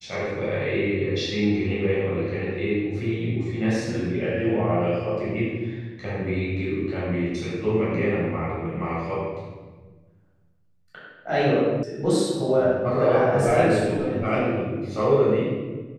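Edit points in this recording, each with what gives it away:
11.83 s: sound stops dead

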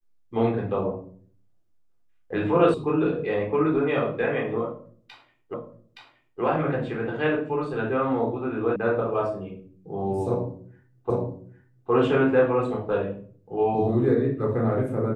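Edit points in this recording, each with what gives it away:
2.74 s: sound stops dead
5.54 s: repeat of the last 0.87 s
8.76 s: sound stops dead
11.10 s: repeat of the last 0.81 s

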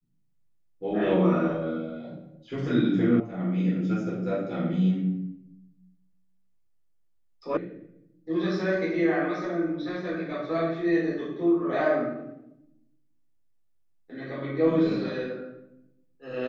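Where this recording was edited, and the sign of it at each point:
3.20 s: sound stops dead
7.57 s: sound stops dead

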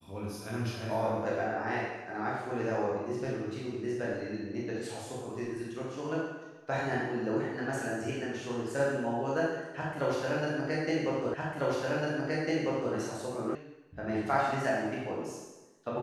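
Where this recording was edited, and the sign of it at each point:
11.34 s: repeat of the last 1.6 s
13.55 s: sound stops dead

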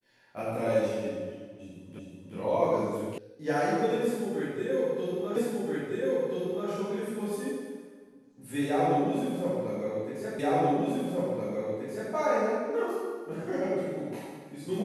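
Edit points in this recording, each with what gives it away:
1.99 s: repeat of the last 0.37 s
3.18 s: sound stops dead
5.36 s: repeat of the last 1.33 s
10.39 s: repeat of the last 1.73 s

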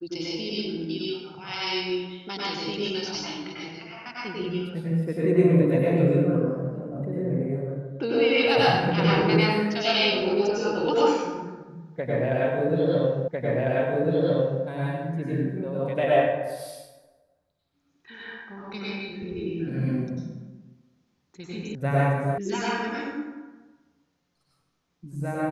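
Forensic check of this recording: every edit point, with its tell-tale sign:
13.28 s: repeat of the last 1.35 s
21.75 s: sound stops dead
22.38 s: sound stops dead

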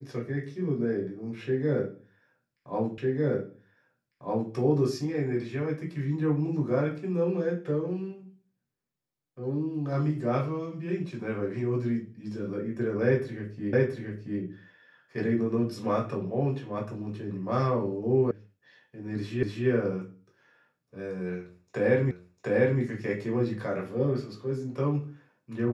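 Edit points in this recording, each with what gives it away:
2.98 s: repeat of the last 1.55 s
13.73 s: repeat of the last 0.68 s
18.31 s: sound stops dead
19.43 s: repeat of the last 0.25 s
22.11 s: repeat of the last 0.7 s

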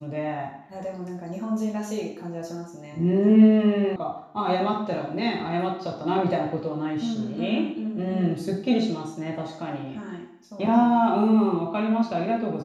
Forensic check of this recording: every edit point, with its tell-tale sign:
3.96 s: sound stops dead

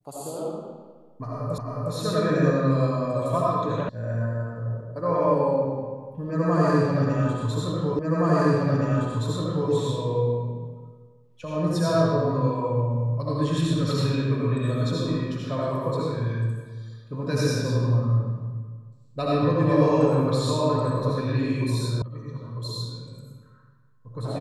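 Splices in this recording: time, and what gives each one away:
1.58 s: repeat of the last 0.36 s
3.89 s: sound stops dead
7.99 s: repeat of the last 1.72 s
22.02 s: sound stops dead

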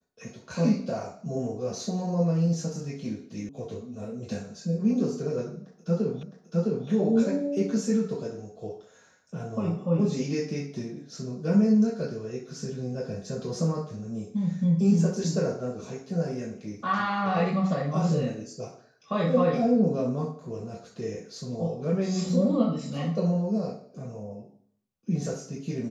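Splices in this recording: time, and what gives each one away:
3.49 s: sound stops dead
6.23 s: repeat of the last 0.66 s

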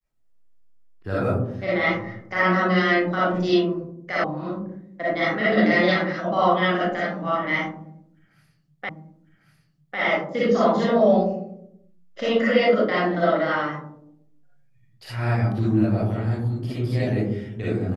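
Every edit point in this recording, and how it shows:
4.24 s: sound stops dead
8.89 s: repeat of the last 1.1 s

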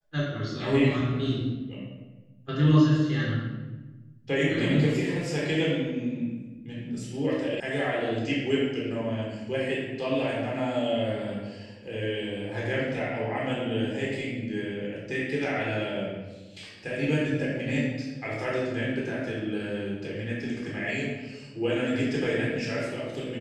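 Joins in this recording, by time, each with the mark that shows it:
7.60 s: sound stops dead

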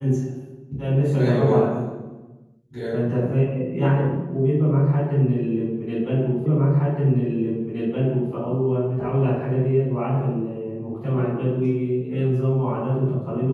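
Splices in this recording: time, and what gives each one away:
6.46 s: repeat of the last 1.87 s

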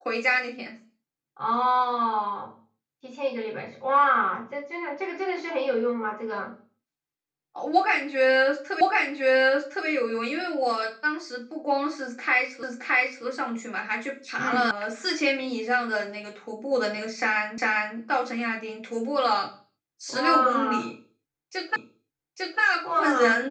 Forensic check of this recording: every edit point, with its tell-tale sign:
8.81 s: repeat of the last 1.06 s
12.63 s: repeat of the last 0.62 s
14.71 s: sound stops dead
17.58 s: repeat of the last 0.4 s
21.76 s: repeat of the last 0.85 s

